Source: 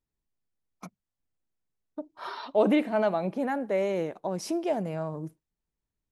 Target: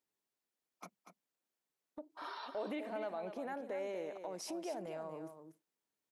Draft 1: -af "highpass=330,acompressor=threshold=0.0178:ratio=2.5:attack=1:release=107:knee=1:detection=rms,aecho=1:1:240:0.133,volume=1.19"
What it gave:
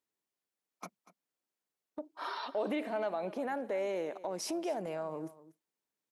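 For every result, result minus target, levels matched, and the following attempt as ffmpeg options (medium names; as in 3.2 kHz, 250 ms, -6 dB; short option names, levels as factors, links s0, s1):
compression: peak gain reduction -6.5 dB; echo-to-direct -8.5 dB
-af "highpass=330,acompressor=threshold=0.00501:ratio=2.5:attack=1:release=107:knee=1:detection=rms,aecho=1:1:240:0.133,volume=1.19"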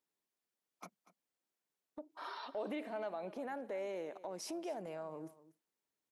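echo-to-direct -8.5 dB
-af "highpass=330,acompressor=threshold=0.00501:ratio=2.5:attack=1:release=107:knee=1:detection=rms,aecho=1:1:240:0.355,volume=1.19"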